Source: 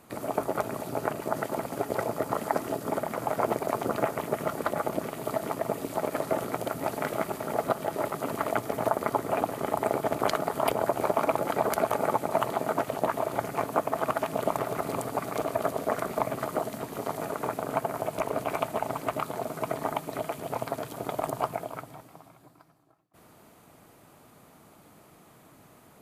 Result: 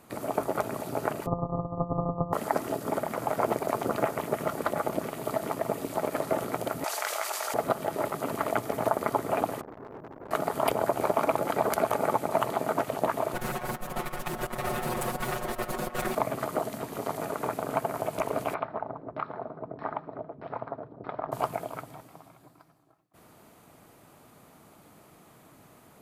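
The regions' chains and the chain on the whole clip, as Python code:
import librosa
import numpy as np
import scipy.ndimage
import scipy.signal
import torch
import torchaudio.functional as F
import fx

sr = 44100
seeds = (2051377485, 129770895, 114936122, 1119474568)

y = fx.chain(x, sr, fx.sample_sort(block=256),
    fx.brickwall_lowpass(high_hz=1300.0),
    fx.comb(ms=7.4, depth=0.79), at=(1.26, 2.33))
y = fx.chain(y, sr, fx.bessel_highpass(hz=920.0, order=4),
    fx.peak_eq(hz=5900.0, db=9.0, octaves=1.3),
    fx.env_flatten(amount_pct=70), at=(6.84, 7.54))
y = fx.chain(y, sr, fx.cheby2_bandstop(low_hz=2200.0, high_hz=8200.0, order=4, stop_db=80),
    fx.clip_hard(threshold_db=-34.5),
    fx.transformer_sat(knee_hz=590.0), at=(9.61, 10.31))
y = fx.chain(y, sr, fx.lower_of_two(delay_ms=8.2),
    fx.over_compress(threshold_db=-34.0, ratio=-0.5),
    fx.comb(ms=5.5, depth=0.96), at=(13.34, 16.15))
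y = fx.chain(y, sr, fx.filter_lfo_lowpass(shape='saw_down', hz=1.6, low_hz=370.0, high_hz=2600.0, q=0.83),
    fx.cheby_ripple(hz=5500.0, ripple_db=6), at=(18.54, 21.32))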